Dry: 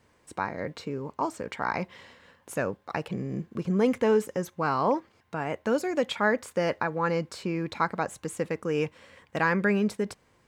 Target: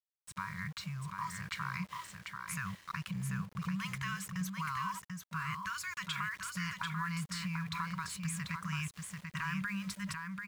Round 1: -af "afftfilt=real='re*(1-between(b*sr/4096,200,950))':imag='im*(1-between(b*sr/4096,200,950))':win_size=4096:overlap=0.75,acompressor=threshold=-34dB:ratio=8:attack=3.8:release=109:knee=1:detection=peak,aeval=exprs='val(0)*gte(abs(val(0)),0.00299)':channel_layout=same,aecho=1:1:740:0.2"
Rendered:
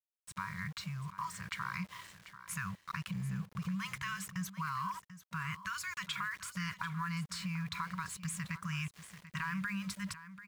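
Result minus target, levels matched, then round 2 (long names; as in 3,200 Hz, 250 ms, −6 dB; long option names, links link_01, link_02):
echo-to-direct −9 dB
-af "afftfilt=real='re*(1-between(b*sr/4096,200,950))':imag='im*(1-between(b*sr/4096,200,950))':win_size=4096:overlap=0.75,acompressor=threshold=-34dB:ratio=8:attack=3.8:release=109:knee=1:detection=peak,aeval=exprs='val(0)*gte(abs(val(0)),0.00299)':channel_layout=same,aecho=1:1:740:0.562"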